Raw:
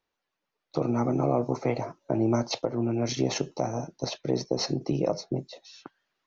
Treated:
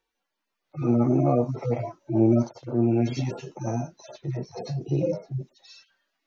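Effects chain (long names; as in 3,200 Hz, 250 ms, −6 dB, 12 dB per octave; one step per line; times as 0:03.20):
harmonic-percussive split with one part muted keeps harmonic
level +6 dB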